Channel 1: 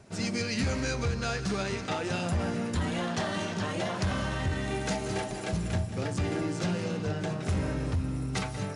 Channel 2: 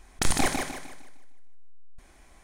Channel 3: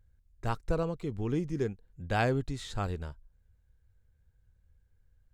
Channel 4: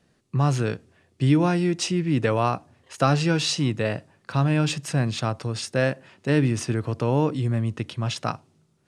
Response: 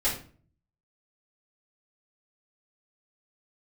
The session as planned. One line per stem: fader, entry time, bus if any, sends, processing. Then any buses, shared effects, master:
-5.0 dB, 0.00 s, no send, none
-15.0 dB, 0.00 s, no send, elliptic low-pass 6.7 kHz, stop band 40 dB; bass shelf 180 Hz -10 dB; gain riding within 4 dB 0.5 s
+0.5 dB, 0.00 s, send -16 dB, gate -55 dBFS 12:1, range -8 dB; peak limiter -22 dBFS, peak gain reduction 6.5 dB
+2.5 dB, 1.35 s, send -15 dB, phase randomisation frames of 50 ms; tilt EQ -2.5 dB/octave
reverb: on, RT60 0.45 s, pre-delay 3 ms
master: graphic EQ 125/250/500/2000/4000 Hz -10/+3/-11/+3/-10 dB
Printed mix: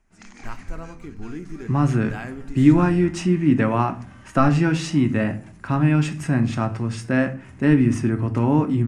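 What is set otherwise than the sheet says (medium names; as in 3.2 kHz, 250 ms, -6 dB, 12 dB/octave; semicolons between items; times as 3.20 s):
stem 1 -5.0 dB -> -14.5 dB; stem 4: missing phase randomisation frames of 50 ms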